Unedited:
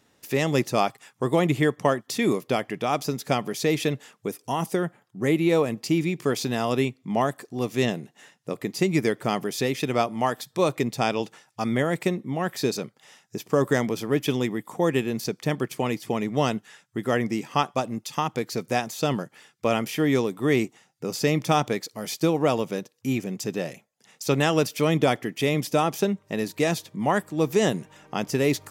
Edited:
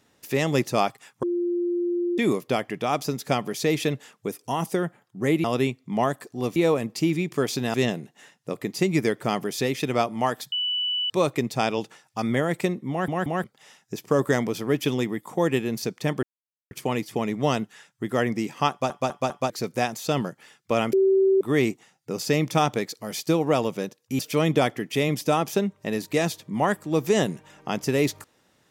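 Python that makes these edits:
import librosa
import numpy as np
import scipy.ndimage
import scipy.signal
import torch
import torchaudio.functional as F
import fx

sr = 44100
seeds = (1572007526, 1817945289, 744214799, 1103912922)

y = fx.edit(x, sr, fx.bleep(start_s=1.23, length_s=0.95, hz=349.0, db=-22.0),
    fx.move(start_s=6.62, length_s=1.12, to_s=5.44),
    fx.insert_tone(at_s=10.52, length_s=0.58, hz=2970.0, db=-23.0),
    fx.stutter_over(start_s=12.32, slice_s=0.18, count=3),
    fx.insert_silence(at_s=15.65, length_s=0.48),
    fx.stutter_over(start_s=17.64, slice_s=0.2, count=4),
    fx.bleep(start_s=19.87, length_s=0.48, hz=385.0, db=-15.5),
    fx.cut(start_s=23.13, length_s=1.52), tone=tone)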